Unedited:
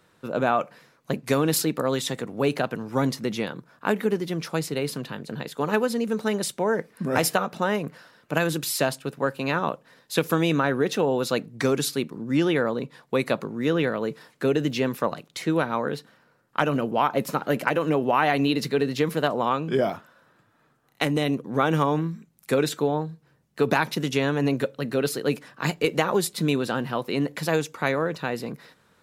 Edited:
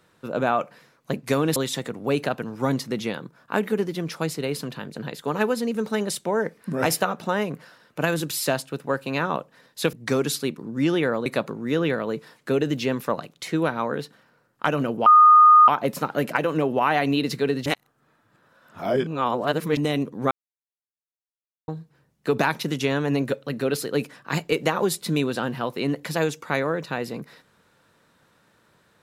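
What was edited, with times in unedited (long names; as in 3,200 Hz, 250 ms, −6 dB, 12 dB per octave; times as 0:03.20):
0:01.56–0:01.89: remove
0:10.26–0:11.46: remove
0:12.79–0:13.20: remove
0:17.00: insert tone 1,230 Hz −8.5 dBFS 0.62 s
0:18.98–0:21.09: reverse
0:21.63–0:23.00: silence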